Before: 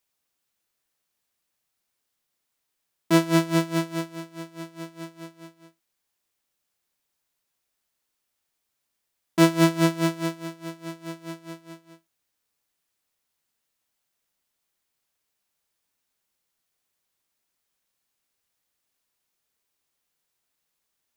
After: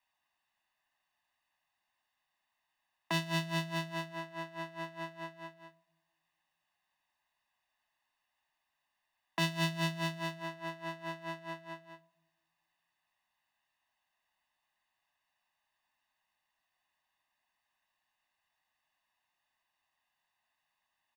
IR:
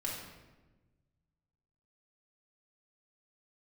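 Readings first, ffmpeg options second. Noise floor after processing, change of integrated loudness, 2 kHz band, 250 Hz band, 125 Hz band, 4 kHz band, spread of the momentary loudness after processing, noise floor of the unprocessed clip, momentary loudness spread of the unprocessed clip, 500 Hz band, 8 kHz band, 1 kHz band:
−85 dBFS, −14.0 dB, −5.5 dB, −16.5 dB, −10.5 dB, −5.0 dB, 13 LU, −80 dBFS, 19 LU, −14.0 dB, −12.0 dB, −8.0 dB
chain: -filter_complex "[0:a]acrossover=split=480 3300:gain=0.224 1 0.126[link_01][link_02][link_03];[link_01][link_02][link_03]amix=inputs=3:normalize=0,aecho=1:1:1.1:0.97,acrossover=split=160|3000[link_04][link_05][link_06];[link_05]acompressor=threshold=-38dB:ratio=6[link_07];[link_04][link_07][link_06]amix=inputs=3:normalize=0,asplit=2[link_08][link_09];[link_09]asuperstop=centerf=1700:order=4:qfactor=1.3[link_10];[1:a]atrim=start_sample=2205,lowpass=1400,adelay=26[link_11];[link_10][link_11]afir=irnorm=-1:irlink=0,volume=-21dB[link_12];[link_08][link_12]amix=inputs=2:normalize=0,volume=1.5dB"

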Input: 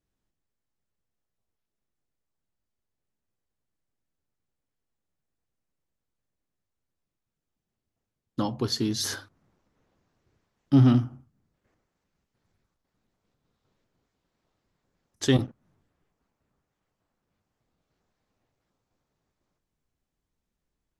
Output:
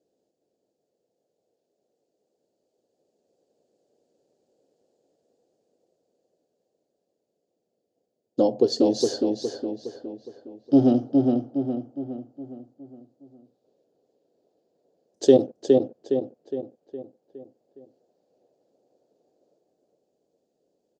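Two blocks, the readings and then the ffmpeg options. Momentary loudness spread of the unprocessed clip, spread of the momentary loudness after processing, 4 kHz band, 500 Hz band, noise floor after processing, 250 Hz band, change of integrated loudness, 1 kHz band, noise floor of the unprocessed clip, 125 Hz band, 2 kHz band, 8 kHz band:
19 LU, 21 LU, −1.5 dB, +14.5 dB, −79 dBFS, +5.0 dB, +1.0 dB, +4.0 dB, −85 dBFS, −8.5 dB, below −10 dB, −2.5 dB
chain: -filter_complex "[0:a]lowshelf=frequency=770:width_type=q:width=3:gain=14,dynaudnorm=framelen=550:gausssize=13:maxgain=12dB,highpass=360,equalizer=frequency=730:width_type=q:width=4:gain=5,equalizer=frequency=2100:width_type=q:width=4:gain=-9,equalizer=frequency=4600:width_type=q:width=4:gain=7,equalizer=frequency=6900:width_type=q:width=4:gain=6,lowpass=frequency=8500:width=0.5412,lowpass=frequency=8500:width=1.3066,asplit=2[link_01][link_02];[link_02]adelay=413,lowpass=frequency=3300:poles=1,volume=-3dB,asplit=2[link_03][link_04];[link_04]adelay=413,lowpass=frequency=3300:poles=1,volume=0.49,asplit=2[link_05][link_06];[link_06]adelay=413,lowpass=frequency=3300:poles=1,volume=0.49,asplit=2[link_07][link_08];[link_08]adelay=413,lowpass=frequency=3300:poles=1,volume=0.49,asplit=2[link_09][link_10];[link_10]adelay=413,lowpass=frequency=3300:poles=1,volume=0.49,asplit=2[link_11][link_12];[link_12]adelay=413,lowpass=frequency=3300:poles=1,volume=0.49[link_13];[link_01][link_03][link_05][link_07][link_09][link_11][link_13]amix=inputs=7:normalize=0"

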